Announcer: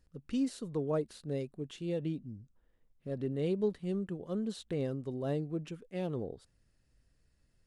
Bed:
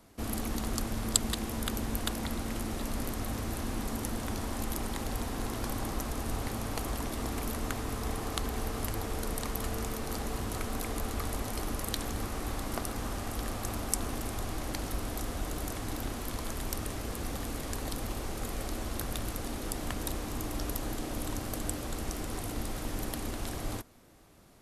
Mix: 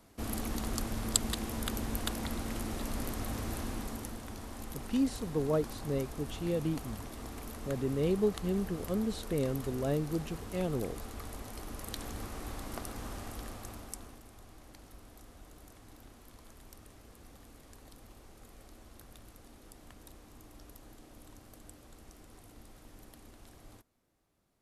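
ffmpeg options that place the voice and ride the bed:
ffmpeg -i stem1.wav -i stem2.wav -filter_complex "[0:a]adelay=4600,volume=2.5dB[link_01];[1:a]volume=1dB,afade=type=out:start_time=3.56:duration=0.66:silence=0.446684,afade=type=in:start_time=11.65:duration=0.41:silence=0.707946,afade=type=out:start_time=13.21:duration=1.01:silence=0.237137[link_02];[link_01][link_02]amix=inputs=2:normalize=0" out.wav

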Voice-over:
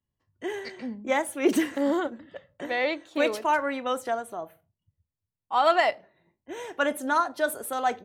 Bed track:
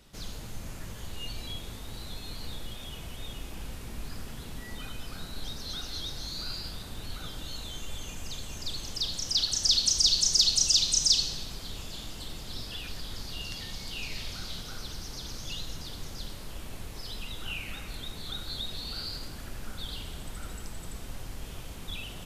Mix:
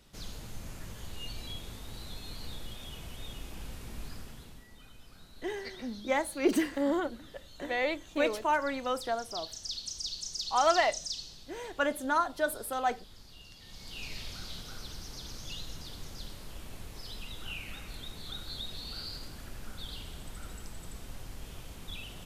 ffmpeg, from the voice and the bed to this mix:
ffmpeg -i stem1.wav -i stem2.wav -filter_complex "[0:a]adelay=5000,volume=-4dB[link_01];[1:a]volume=7.5dB,afade=type=out:start_time=4.03:duration=0.65:silence=0.266073,afade=type=in:start_time=13.6:duration=0.47:silence=0.298538[link_02];[link_01][link_02]amix=inputs=2:normalize=0" out.wav

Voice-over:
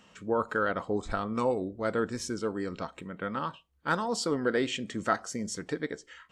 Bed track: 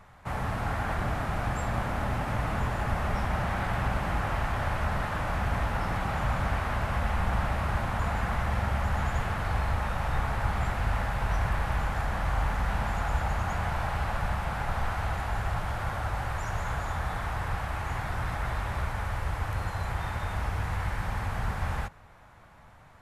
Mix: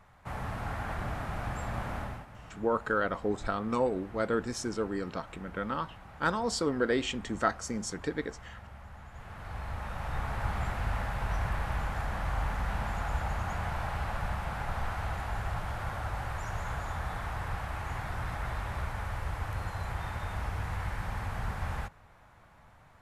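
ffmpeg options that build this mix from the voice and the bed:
ffmpeg -i stem1.wav -i stem2.wav -filter_complex "[0:a]adelay=2350,volume=-0.5dB[link_01];[1:a]volume=10.5dB,afade=type=out:start_time=1.96:duration=0.31:silence=0.188365,afade=type=in:start_time=9.11:duration=1.35:silence=0.158489[link_02];[link_01][link_02]amix=inputs=2:normalize=0" out.wav

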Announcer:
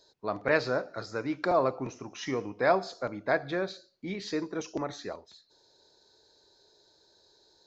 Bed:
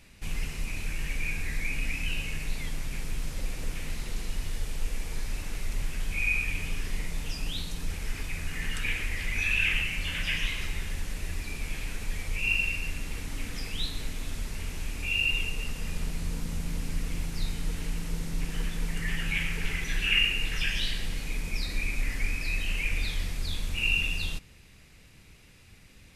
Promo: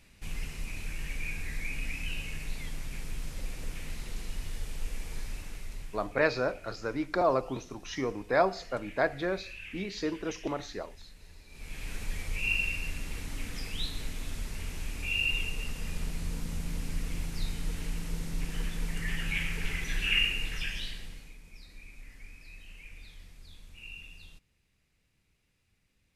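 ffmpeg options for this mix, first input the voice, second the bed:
ffmpeg -i stem1.wav -i stem2.wav -filter_complex "[0:a]adelay=5700,volume=-0.5dB[link_01];[1:a]volume=12dB,afade=type=out:start_time=5.2:duration=0.97:silence=0.188365,afade=type=in:start_time=11.49:duration=0.47:silence=0.149624,afade=type=out:start_time=20.21:duration=1.16:silence=0.141254[link_02];[link_01][link_02]amix=inputs=2:normalize=0" out.wav

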